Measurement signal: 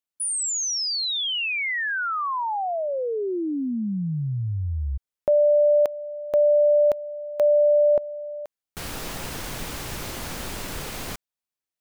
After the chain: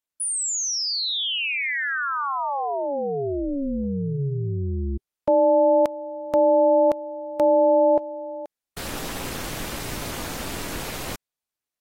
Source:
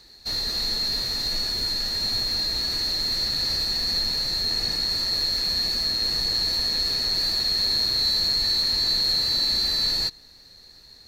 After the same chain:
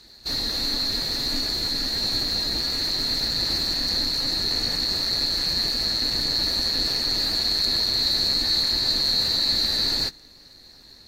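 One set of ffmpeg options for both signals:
ffmpeg -i in.wav -af "tremolo=f=280:d=0.824,volume=4dB" -ar 44100 -c:a aac -b:a 48k out.aac

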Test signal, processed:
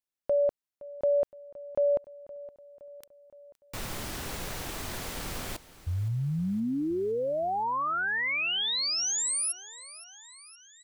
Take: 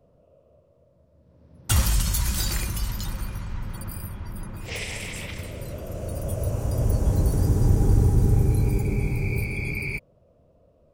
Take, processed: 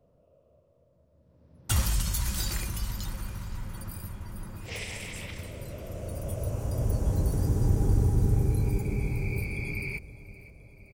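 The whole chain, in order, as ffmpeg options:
ffmpeg -i in.wav -af "aecho=1:1:517|1034|1551|2068|2585:0.119|0.0701|0.0414|0.0244|0.0144,volume=-5dB" out.wav

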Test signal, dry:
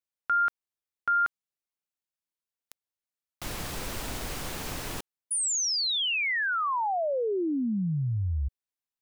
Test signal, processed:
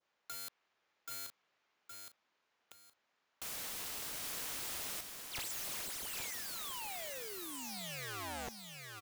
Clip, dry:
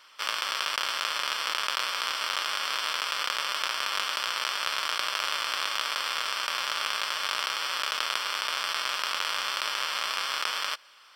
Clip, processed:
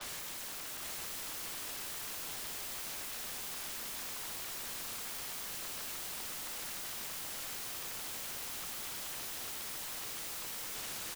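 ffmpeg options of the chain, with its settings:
ffmpeg -i in.wav -filter_complex "[0:a]asplit=2[link_01][link_02];[link_02]highpass=frequency=720:poles=1,volume=24dB,asoftclip=type=tanh:threshold=-7.5dB[link_03];[link_01][link_03]amix=inputs=2:normalize=0,lowpass=frequency=1800:poles=1,volume=-6dB,aresample=16000,asoftclip=type=hard:threshold=-23.5dB,aresample=44100,aemphasis=mode=reproduction:type=50kf,alimiter=level_in=7.5dB:limit=-24dB:level=0:latency=1:release=17,volume=-7.5dB,adynamicequalizer=threshold=0.00501:dfrequency=2300:dqfactor=0.79:tfrequency=2300:tqfactor=0.79:attack=5:release=100:ratio=0.375:range=1.5:mode=boostabove:tftype=bell,aeval=exprs='(mod(141*val(0)+1,2)-1)/141':channel_layout=same,asplit=2[link_04][link_05];[link_05]aecho=0:1:817|1634|2451:0.531|0.138|0.0359[link_06];[link_04][link_06]amix=inputs=2:normalize=0,volume=5dB" out.wav

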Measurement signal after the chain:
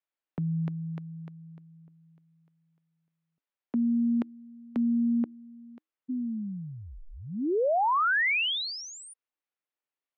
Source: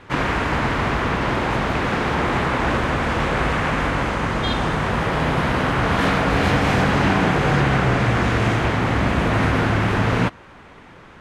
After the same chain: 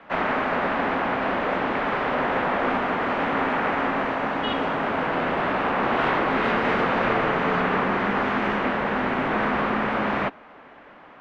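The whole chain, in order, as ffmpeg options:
ffmpeg -i in.wav -filter_complex "[0:a]afreqshift=-320,acrossover=split=270 3400:gain=0.112 1 0.0631[link_01][link_02][link_03];[link_01][link_02][link_03]amix=inputs=3:normalize=0" out.wav

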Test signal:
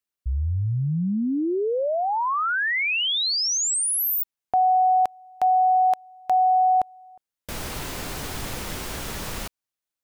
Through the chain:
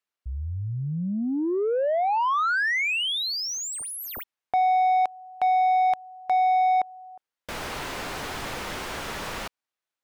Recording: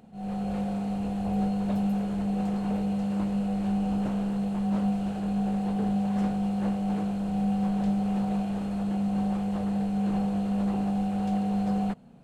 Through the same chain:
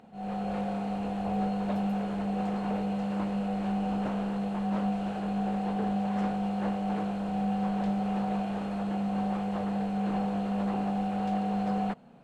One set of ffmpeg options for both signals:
ffmpeg -i in.wav -filter_complex "[0:a]asplit=2[link_01][link_02];[link_02]highpass=frequency=720:poles=1,volume=13dB,asoftclip=type=tanh:threshold=-15dB[link_03];[link_01][link_03]amix=inputs=2:normalize=0,lowpass=frequency=2100:poles=1,volume=-6dB,volume=-2dB" out.wav

